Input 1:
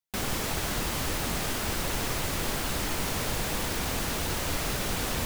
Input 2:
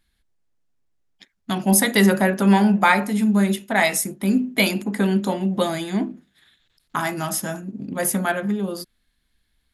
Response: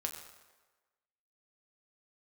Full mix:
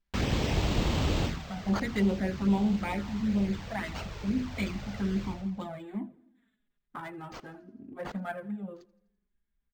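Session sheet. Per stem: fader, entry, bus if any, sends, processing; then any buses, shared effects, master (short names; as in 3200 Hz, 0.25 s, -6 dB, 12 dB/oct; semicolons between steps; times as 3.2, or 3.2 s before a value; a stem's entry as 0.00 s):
+1.5 dB, 0.00 s, no send, echo send -14.5 dB, HPF 45 Hz; low shelf 84 Hz +5 dB; auto duck -21 dB, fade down 0.25 s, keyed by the second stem
-13.0 dB, 0.00 s, no send, echo send -22 dB, Wiener smoothing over 9 samples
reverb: off
echo: feedback echo 83 ms, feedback 55%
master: low shelf 400 Hz +4.5 dB; envelope flanger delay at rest 5 ms, full sweep at -22.5 dBFS; decimation joined by straight lines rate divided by 4×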